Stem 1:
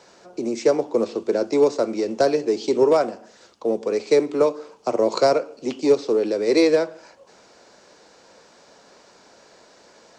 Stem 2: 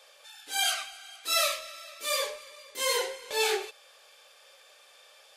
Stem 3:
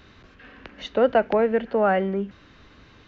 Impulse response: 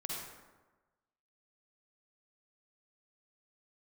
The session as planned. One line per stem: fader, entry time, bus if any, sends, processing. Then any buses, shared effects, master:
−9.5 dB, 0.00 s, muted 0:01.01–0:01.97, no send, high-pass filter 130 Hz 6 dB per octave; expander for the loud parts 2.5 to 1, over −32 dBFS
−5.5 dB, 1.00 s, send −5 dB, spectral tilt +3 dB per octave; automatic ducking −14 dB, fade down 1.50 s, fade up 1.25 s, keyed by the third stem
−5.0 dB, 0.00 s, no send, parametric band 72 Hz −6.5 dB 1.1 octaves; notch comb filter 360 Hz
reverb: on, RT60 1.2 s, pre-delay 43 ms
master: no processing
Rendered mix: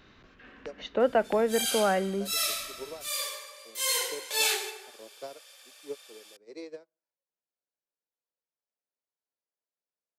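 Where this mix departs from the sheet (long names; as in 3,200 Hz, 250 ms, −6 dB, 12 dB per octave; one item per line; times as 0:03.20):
stem 1 −9.5 dB → −20.5 dB
stem 3: missing notch comb filter 360 Hz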